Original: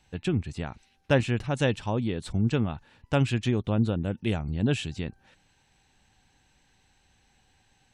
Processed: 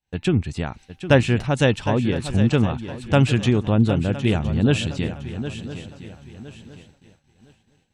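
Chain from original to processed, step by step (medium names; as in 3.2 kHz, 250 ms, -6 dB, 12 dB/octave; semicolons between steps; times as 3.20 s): shuffle delay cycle 1012 ms, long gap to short 3:1, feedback 31%, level -11.5 dB; expander -49 dBFS; trim +7 dB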